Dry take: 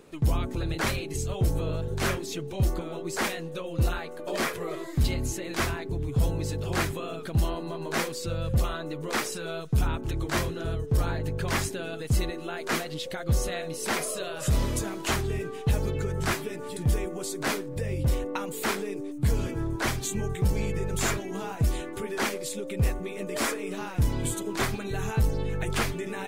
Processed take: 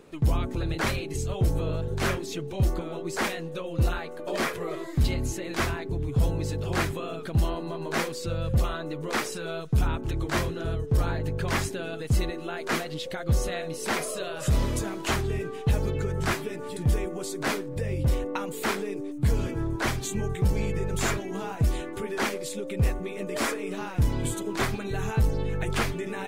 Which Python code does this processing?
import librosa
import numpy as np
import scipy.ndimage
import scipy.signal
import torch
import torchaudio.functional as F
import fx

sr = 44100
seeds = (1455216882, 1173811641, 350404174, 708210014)

y = fx.high_shelf(x, sr, hz=5300.0, db=-4.5)
y = y * librosa.db_to_amplitude(1.0)